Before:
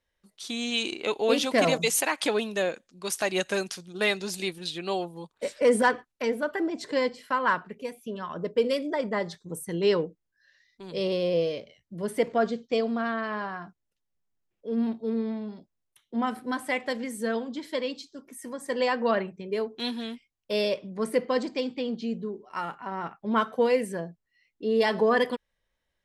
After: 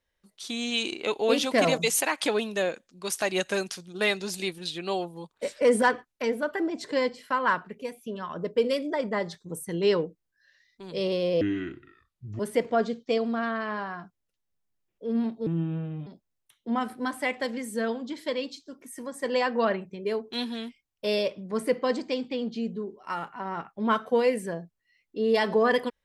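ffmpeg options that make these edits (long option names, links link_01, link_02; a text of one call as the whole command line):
ffmpeg -i in.wav -filter_complex "[0:a]asplit=5[link_01][link_02][link_03][link_04][link_05];[link_01]atrim=end=11.414[link_06];[link_02]atrim=start=11.41:end=12.02,asetpts=PTS-STARTPTS,asetrate=27342,aresample=44100[link_07];[link_03]atrim=start=12.016:end=15.094[link_08];[link_04]atrim=start=15.09:end=15.53,asetpts=PTS-STARTPTS,asetrate=32193,aresample=44100[link_09];[link_05]atrim=start=15.526[link_10];[link_06][link_07]acrossfade=duration=0.004:curve1=hsin:curve2=hsin[link_11];[link_11][link_08]acrossfade=duration=0.004:curve1=hsin:curve2=hsin[link_12];[link_12][link_09]acrossfade=duration=0.004:curve1=hsin:curve2=hsin[link_13];[link_13][link_10]acrossfade=duration=0.004:curve1=hsin:curve2=hsin" out.wav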